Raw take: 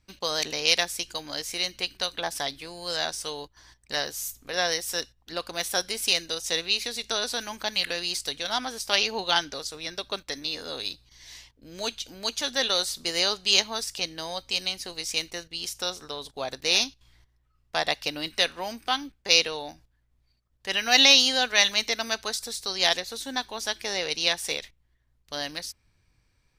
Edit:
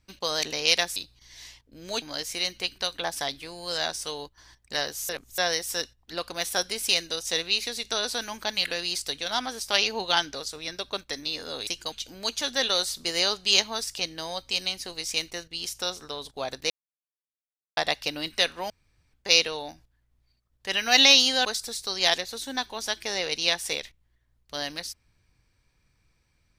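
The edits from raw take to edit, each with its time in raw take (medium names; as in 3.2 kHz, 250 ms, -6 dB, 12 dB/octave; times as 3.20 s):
0.96–1.21 s: swap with 10.86–11.92 s
4.28–4.57 s: reverse
16.70–17.77 s: mute
18.70–19.13 s: room tone
21.45–22.24 s: delete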